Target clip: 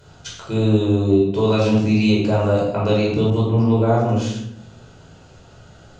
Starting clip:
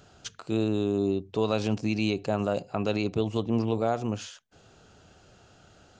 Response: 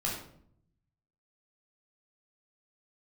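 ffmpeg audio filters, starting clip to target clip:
-filter_complex "[1:a]atrim=start_sample=2205,asetrate=33957,aresample=44100[a];[0:a][a]afir=irnorm=-1:irlink=0,asettb=1/sr,asplit=3[b][c][d];[b]atrim=end=3.304[e];[c]atrim=start=3.3:end=4.09,asetpts=PTS-STARTPTS,afade=t=in:d=0.004:c=qsin,afade=t=out:st=0.786:d=0.004:c=qsin,adynamicequalizer=threshold=0.01:dfrequency=2400:dqfactor=0.7:tfrequency=2400:tqfactor=0.7:attack=5:release=100:ratio=0.375:range=3:mode=cutabove:tftype=highshelf[f];[d]atrim=start=4.086[g];[e][f]acrossfade=d=0.004:c1=hsin:c2=qsin[h];[h][g]acrossfade=d=0.004:c1=qsin:c2=hsin,volume=1.5dB"

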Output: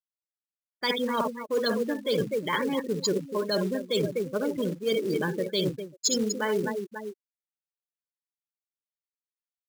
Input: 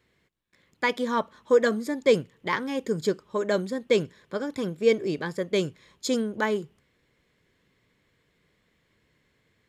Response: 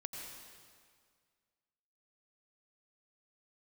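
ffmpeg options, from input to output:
-af "aecho=1:1:53|69|251|539:0.251|0.316|0.266|0.168,acontrast=39,afftfilt=real='re*gte(hypot(re,im),0.0794)':imag='im*gte(hypot(re,im),0.0794)':win_size=1024:overlap=0.75,aexciter=amount=12.8:drive=4.1:freq=3.6k,areverse,acompressor=threshold=-24dB:ratio=8,areverse,acrusher=bits=5:mode=log:mix=0:aa=0.000001"

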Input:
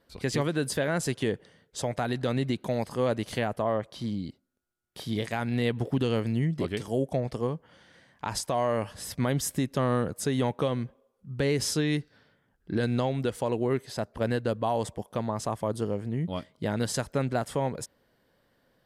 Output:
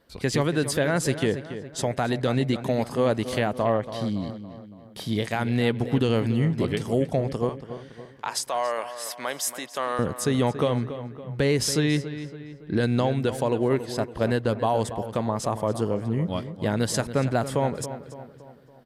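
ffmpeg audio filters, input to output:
-filter_complex "[0:a]asettb=1/sr,asplit=3[a][b][c];[a]atrim=end=7.494[d];[b]atrim=start=7.49:end=9.99,asetpts=PTS-STARTPTS,afade=t=in:d=0.004:c=qsin,afade=t=out:st=2.496:d=0.004:c=qsin,highpass=690[e];[c]atrim=start=9.986[f];[d][e]acrossfade=d=0.004:c1=hsin:c2=qsin[g];[g][f]acrossfade=d=0.004:c1=qsin:c2=hsin,asplit=2[h][i];[i]adelay=281,lowpass=f=3.1k:p=1,volume=-11.5dB,asplit=2[j][k];[k]adelay=281,lowpass=f=3.1k:p=1,volume=0.5,asplit=2[l][m];[m]adelay=281,lowpass=f=3.1k:p=1,volume=0.5,asplit=2[n][o];[o]adelay=281,lowpass=f=3.1k:p=1,volume=0.5,asplit=2[p][q];[q]adelay=281,lowpass=f=3.1k:p=1,volume=0.5[r];[h][j][l][n][p][r]amix=inputs=6:normalize=0,volume=4dB"

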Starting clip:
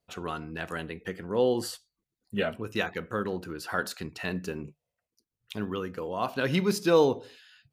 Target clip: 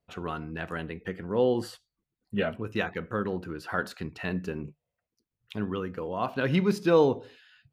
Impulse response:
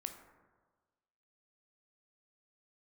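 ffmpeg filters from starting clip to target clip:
-af "bass=f=250:g=3,treble=f=4k:g=-10"

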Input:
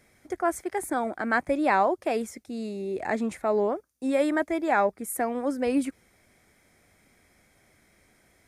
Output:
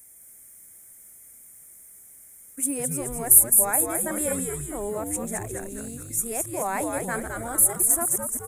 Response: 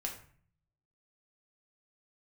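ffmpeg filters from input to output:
-filter_complex "[0:a]areverse,asplit=8[a][b][c][d][e][f][g][h];[b]adelay=213,afreqshift=-120,volume=-4dB[i];[c]adelay=426,afreqshift=-240,volume=-9.5dB[j];[d]adelay=639,afreqshift=-360,volume=-15dB[k];[e]adelay=852,afreqshift=-480,volume=-20.5dB[l];[f]adelay=1065,afreqshift=-600,volume=-26.1dB[m];[g]adelay=1278,afreqshift=-720,volume=-31.6dB[n];[h]adelay=1491,afreqshift=-840,volume=-37.1dB[o];[a][i][j][k][l][m][n][o]amix=inputs=8:normalize=0,aexciter=amount=13.9:drive=9:freq=7.1k,volume=-6.5dB"

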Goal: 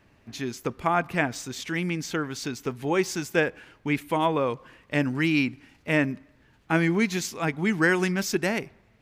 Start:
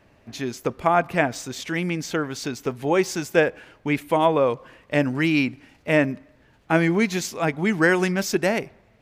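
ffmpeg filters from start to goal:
-af "equalizer=f=600:w=1.7:g=-6,volume=-2dB"

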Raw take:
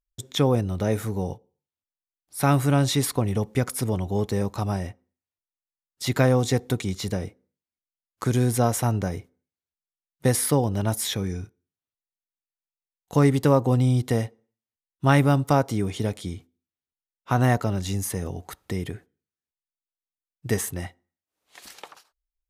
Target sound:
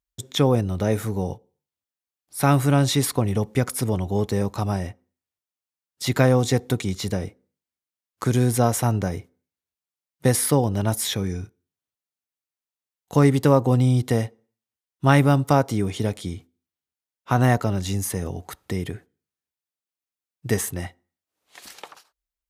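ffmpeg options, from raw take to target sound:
-af "highpass=48,volume=2dB"

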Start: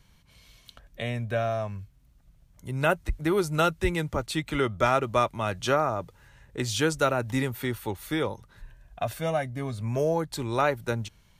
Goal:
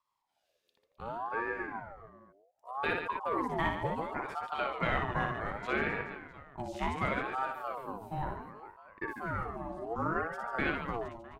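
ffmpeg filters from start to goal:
-af "afwtdn=0.0316,aecho=1:1:60|144|261.6|426.2|656.7:0.631|0.398|0.251|0.158|0.1,aeval=exprs='val(0)*sin(2*PI*760*n/s+760*0.4/0.67*sin(2*PI*0.67*n/s))':c=same,volume=-6.5dB"

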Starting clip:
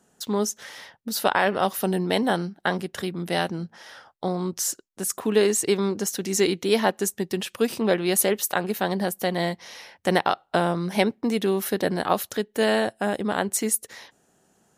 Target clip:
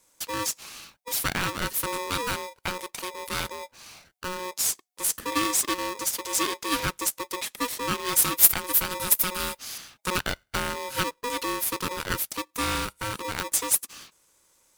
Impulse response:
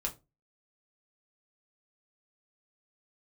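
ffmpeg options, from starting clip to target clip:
-filter_complex "[0:a]asettb=1/sr,asplit=3[a][b][c];[a]atrim=end=8.224[d];[b]atrim=start=8.22:end=9.78,asetpts=PTS-STARTPTS,afade=t=in:d=0.004:c=qsin,afade=t=out:st=1.556:d=0.004:c=qsin,aemphasis=mode=production:type=50fm[e];[c]atrim=start=9.776[f];[d][e]acrossfade=d=0.004:c1=hsin:c2=qsin[g];[g][f]acrossfade=d=0.004:c1=qsin:c2=hsin,aexciter=amount=1.1:drive=10:freq=2.4k,aeval=exprs='val(0)*sgn(sin(2*PI*730*n/s))':c=same,volume=-7dB"

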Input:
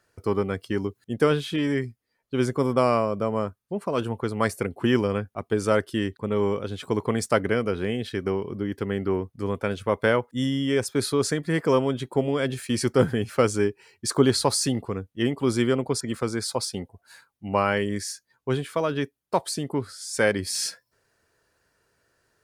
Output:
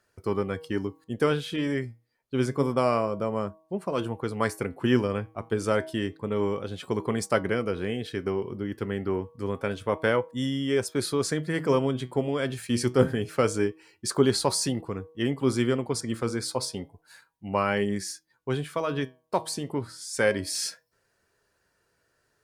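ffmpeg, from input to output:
-af "bandreject=f=159.3:t=h:w=4,bandreject=f=318.6:t=h:w=4,bandreject=f=477.9:t=h:w=4,bandreject=f=637.2:t=h:w=4,bandreject=f=796.5:t=h:w=4,bandreject=f=955.8:t=h:w=4,bandreject=f=1.1151k:t=h:w=4,flanger=delay=4.8:depth=4.2:regen=81:speed=0.28:shape=triangular,volume=2dB"

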